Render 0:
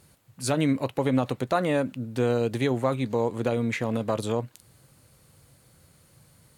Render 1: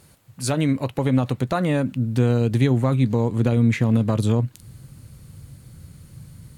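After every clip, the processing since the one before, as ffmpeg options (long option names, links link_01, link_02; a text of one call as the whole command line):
ffmpeg -i in.wav -filter_complex "[0:a]asplit=2[link_01][link_02];[link_02]acompressor=threshold=-32dB:ratio=6,volume=-2.5dB[link_03];[link_01][link_03]amix=inputs=2:normalize=0,asubboost=boost=5:cutoff=250" out.wav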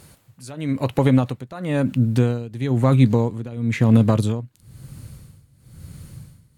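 ffmpeg -i in.wav -af "tremolo=f=1:d=0.89,volume=5dB" out.wav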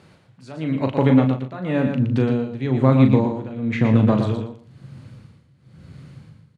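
ffmpeg -i in.wav -filter_complex "[0:a]highpass=120,lowpass=3400,asplit=2[link_01][link_02];[link_02]adelay=38,volume=-7dB[link_03];[link_01][link_03]amix=inputs=2:normalize=0,aecho=1:1:117|234|351:0.473|0.0852|0.0153" out.wav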